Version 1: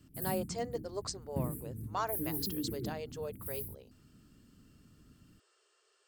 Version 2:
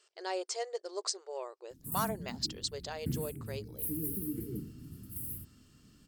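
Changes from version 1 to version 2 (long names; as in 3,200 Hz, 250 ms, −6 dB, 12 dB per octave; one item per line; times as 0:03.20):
background: entry +1.70 s
master: add parametric band 5,300 Hz +6 dB 2.2 octaves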